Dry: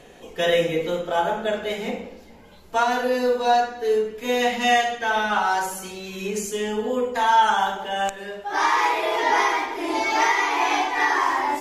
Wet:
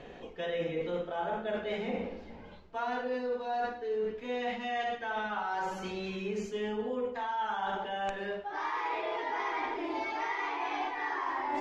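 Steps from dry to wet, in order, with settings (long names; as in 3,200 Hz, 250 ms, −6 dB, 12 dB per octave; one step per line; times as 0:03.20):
reversed playback
downward compressor 10 to 1, threshold −30 dBFS, peak gain reduction 17.5 dB
reversed playback
high-frequency loss of the air 210 metres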